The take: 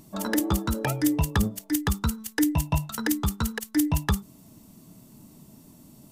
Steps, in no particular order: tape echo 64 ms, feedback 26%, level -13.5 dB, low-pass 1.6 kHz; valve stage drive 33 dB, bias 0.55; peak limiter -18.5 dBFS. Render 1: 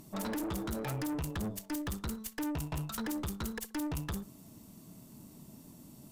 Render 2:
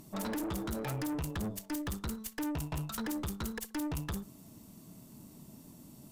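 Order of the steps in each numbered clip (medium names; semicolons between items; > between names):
tape echo > peak limiter > valve stage; peak limiter > tape echo > valve stage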